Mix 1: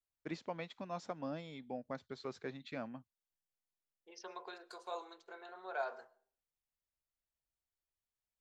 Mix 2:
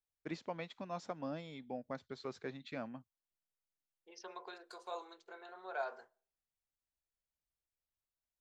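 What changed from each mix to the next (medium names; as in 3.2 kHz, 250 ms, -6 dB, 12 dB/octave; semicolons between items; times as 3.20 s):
second voice: send -10.0 dB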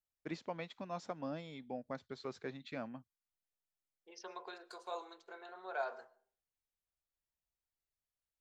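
second voice: send +11.5 dB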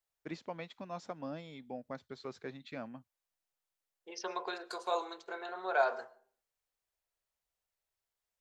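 second voice +9.5 dB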